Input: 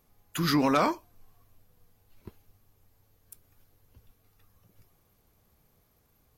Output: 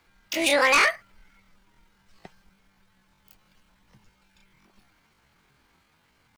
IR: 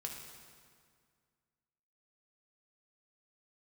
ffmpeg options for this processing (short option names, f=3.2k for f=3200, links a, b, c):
-filter_complex "[0:a]asetrate=85689,aresample=44100,atempo=0.514651,acrossover=split=130|1000|5900[a][b][c][d];[c]aeval=exprs='0.188*sin(PI/2*2.24*val(0)/0.188)':c=same[e];[a][b][e][d]amix=inputs=4:normalize=0"